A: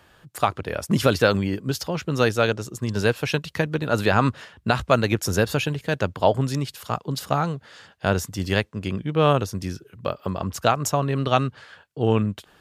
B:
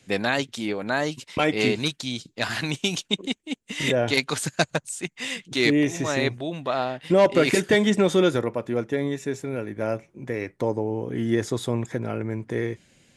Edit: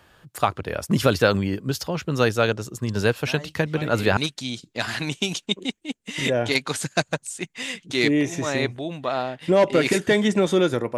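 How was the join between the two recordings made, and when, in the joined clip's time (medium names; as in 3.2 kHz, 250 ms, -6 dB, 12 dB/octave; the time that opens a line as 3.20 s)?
A
3.23 s: add B from 0.85 s 0.94 s -14 dB
4.17 s: go over to B from 1.79 s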